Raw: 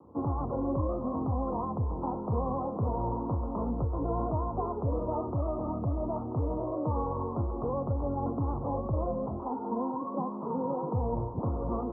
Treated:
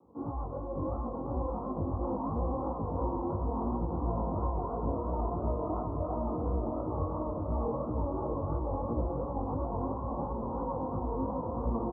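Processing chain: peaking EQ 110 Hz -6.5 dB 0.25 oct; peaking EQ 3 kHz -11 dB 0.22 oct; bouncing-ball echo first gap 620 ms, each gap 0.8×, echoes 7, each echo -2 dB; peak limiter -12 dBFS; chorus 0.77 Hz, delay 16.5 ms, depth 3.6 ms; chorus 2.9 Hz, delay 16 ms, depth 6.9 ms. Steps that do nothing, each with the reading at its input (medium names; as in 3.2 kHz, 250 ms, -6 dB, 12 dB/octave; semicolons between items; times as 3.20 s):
peaking EQ 3 kHz: input has nothing above 1.3 kHz; peak limiter -12 dBFS: peak at its input -14.5 dBFS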